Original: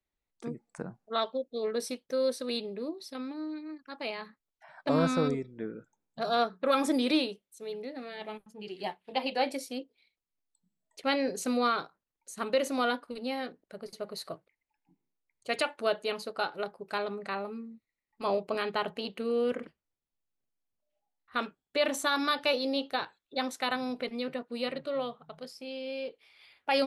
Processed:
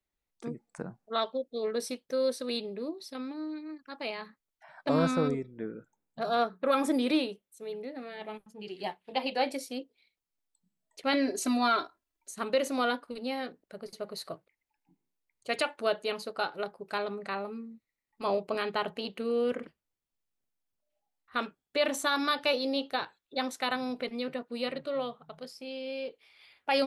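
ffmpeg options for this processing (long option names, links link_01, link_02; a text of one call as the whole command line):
ffmpeg -i in.wav -filter_complex "[0:a]asettb=1/sr,asplit=3[link_01][link_02][link_03];[link_01]atrim=end=5.114[link_04];[link_02]atrim=start=5.11:end=8.34,asetpts=PTS-STARTPTS,afade=type=in:duration=0.004:curve=qsin,afade=type=out:start_time=3.226:duration=0.004:curve=qsin,equalizer=frequency=4900:width_type=o:width=1.3:gain=-5[link_05];[link_03]atrim=start=8.336[link_06];[link_04][link_05]acrossfade=duration=0.004:curve1=hsin:curve2=qsin[link_07];[link_07][link_06]acrossfade=duration=0.004:curve1=qsin:curve2=hsin,asettb=1/sr,asplit=3[link_08][link_09][link_10];[link_08]atrim=end=11.134[link_11];[link_09]atrim=start=11.13:end=12.31,asetpts=PTS-STARTPTS,afade=type=in:duration=0.004:curve=qsin,afade=type=out:start_time=1.176:duration=0.004:curve=qsin,aecho=1:1:3:0.94,atrim=end_sample=52038[link_12];[link_10]atrim=start=12.306[link_13];[link_11][link_12]acrossfade=duration=0.004:curve1=hsin:curve2=qsin[link_14];[link_14][link_13]acrossfade=duration=0.004:curve1=qsin:curve2=hsin" out.wav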